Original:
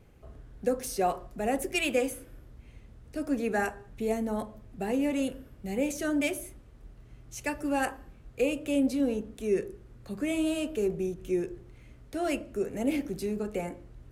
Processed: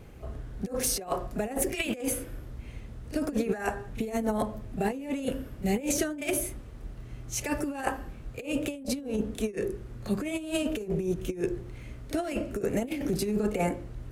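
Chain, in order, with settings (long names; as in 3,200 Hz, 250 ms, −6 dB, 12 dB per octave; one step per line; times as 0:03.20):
compressor whose output falls as the input rises −33 dBFS, ratio −0.5
echo ahead of the sound 33 ms −15 dB
level +4.5 dB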